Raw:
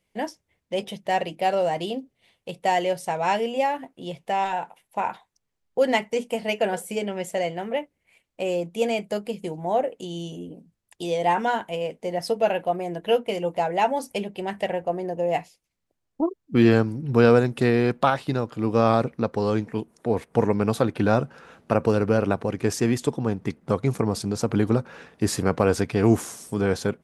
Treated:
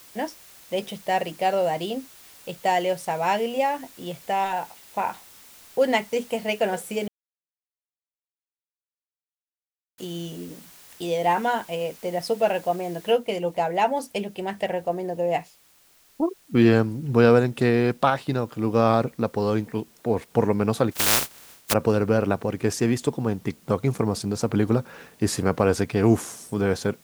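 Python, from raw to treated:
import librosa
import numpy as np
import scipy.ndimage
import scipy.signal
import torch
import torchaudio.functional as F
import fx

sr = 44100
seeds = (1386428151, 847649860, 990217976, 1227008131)

y = fx.noise_floor_step(x, sr, seeds[0], at_s=13.12, before_db=-49, after_db=-58, tilt_db=0.0)
y = fx.spec_flatten(y, sr, power=0.13, at=(20.91, 21.72), fade=0.02)
y = fx.edit(y, sr, fx.silence(start_s=7.08, length_s=2.9), tone=tone)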